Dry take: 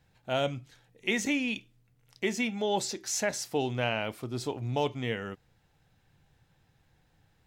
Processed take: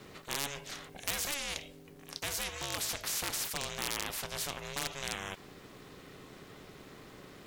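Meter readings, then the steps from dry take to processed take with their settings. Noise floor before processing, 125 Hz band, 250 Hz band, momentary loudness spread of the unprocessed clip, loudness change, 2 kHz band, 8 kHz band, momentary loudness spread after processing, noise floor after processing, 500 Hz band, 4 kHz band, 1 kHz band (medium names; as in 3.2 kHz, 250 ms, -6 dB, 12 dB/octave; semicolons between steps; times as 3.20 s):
-69 dBFS, -11.0 dB, -14.5 dB, 7 LU, -4.5 dB, -5.0 dB, +1.0 dB, 18 LU, -54 dBFS, -12.5 dB, +0.5 dB, -6.0 dB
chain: ring modulator 280 Hz; wavefolder -21.5 dBFS; spectrum-flattening compressor 4:1; trim +8.5 dB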